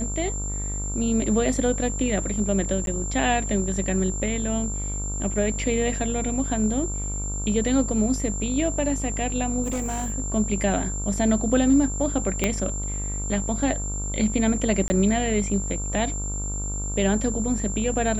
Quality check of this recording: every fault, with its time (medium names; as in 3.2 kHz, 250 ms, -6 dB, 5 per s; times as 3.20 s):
buzz 50 Hz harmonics 29 -30 dBFS
whine 7.3 kHz -31 dBFS
2.86–2.87 s: dropout 12 ms
9.63–10.12 s: clipped -23 dBFS
12.44 s: pop -7 dBFS
14.88–14.90 s: dropout 20 ms